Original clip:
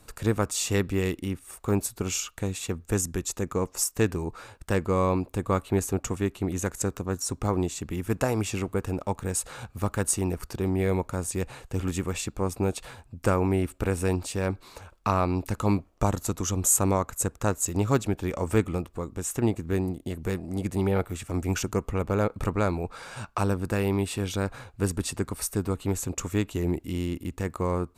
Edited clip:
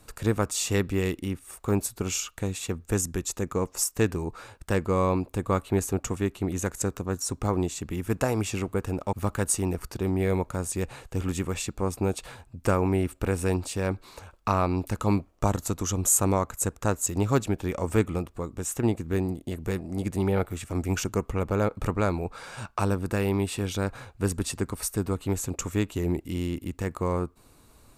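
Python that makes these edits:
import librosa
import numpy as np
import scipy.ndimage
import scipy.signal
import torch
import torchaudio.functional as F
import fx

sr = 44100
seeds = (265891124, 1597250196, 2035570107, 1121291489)

y = fx.edit(x, sr, fx.cut(start_s=9.13, length_s=0.59), tone=tone)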